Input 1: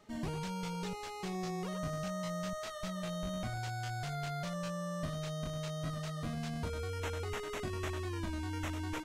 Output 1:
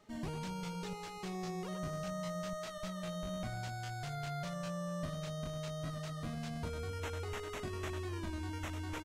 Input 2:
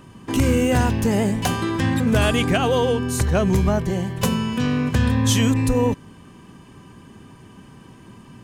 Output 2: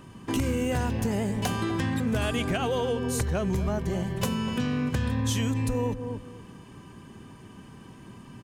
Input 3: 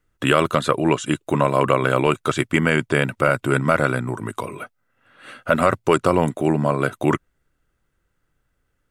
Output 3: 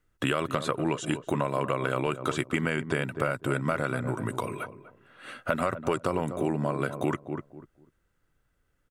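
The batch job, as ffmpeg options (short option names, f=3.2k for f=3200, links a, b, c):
-filter_complex "[0:a]asplit=2[a][b];[b]adelay=246,lowpass=f=860:p=1,volume=-11.5dB,asplit=2[c][d];[d]adelay=246,lowpass=f=860:p=1,volume=0.24,asplit=2[e][f];[f]adelay=246,lowpass=f=860:p=1,volume=0.24[g];[a][c][e][g]amix=inputs=4:normalize=0,acompressor=threshold=-22dB:ratio=4,volume=-2.5dB"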